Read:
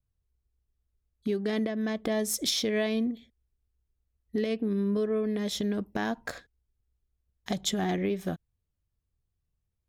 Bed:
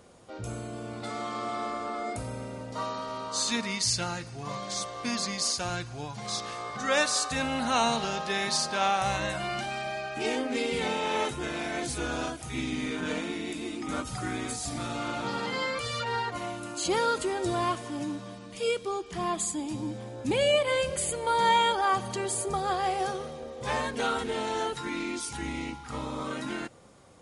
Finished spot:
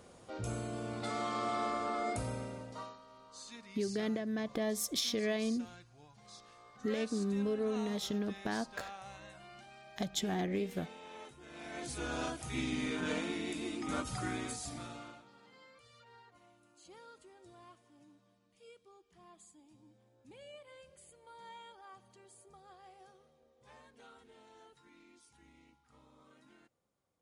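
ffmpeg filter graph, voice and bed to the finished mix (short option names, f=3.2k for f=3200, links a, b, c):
-filter_complex "[0:a]adelay=2500,volume=-6dB[a];[1:a]volume=15.5dB,afade=t=out:st=2.28:d=0.7:silence=0.105925,afade=t=in:st=11.45:d=0.91:silence=0.133352,afade=t=out:st=14.2:d=1.05:silence=0.0562341[b];[a][b]amix=inputs=2:normalize=0"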